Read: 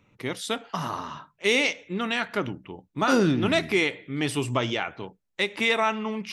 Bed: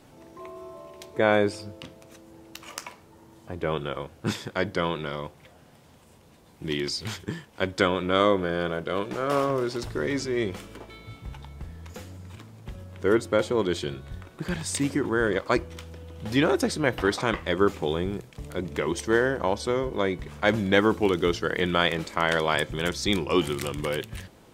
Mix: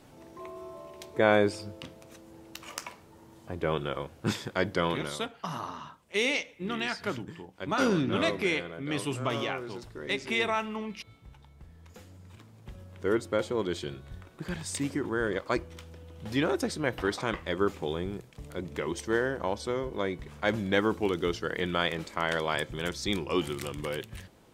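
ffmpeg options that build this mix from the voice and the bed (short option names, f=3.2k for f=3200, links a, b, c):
-filter_complex "[0:a]adelay=4700,volume=-5.5dB[a];[1:a]volume=5.5dB,afade=t=out:st=4.99:d=0.2:silence=0.281838,afade=t=in:st=11.56:d=1.29:silence=0.446684[b];[a][b]amix=inputs=2:normalize=0"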